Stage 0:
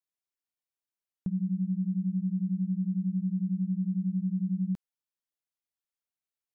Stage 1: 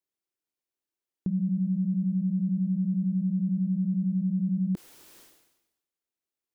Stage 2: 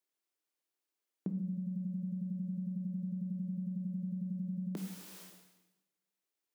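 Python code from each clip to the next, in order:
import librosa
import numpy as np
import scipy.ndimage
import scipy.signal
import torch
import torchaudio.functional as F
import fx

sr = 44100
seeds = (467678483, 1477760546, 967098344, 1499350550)

y1 = fx.peak_eq(x, sr, hz=350.0, db=10.0, octaves=0.94)
y1 = fx.sustainer(y1, sr, db_per_s=58.0)
y2 = scipy.signal.sosfilt(scipy.signal.butter(2, 290.0, 'highpass', fs=sr, output='sos'), y1)
y2 = fx.room_shoebox(y2, sr, seeds[0], volume_m3=220.0, walls='mixed', distance_m=0.4)
y2 = y2 * 10.0 ** (1.0 / 20.0)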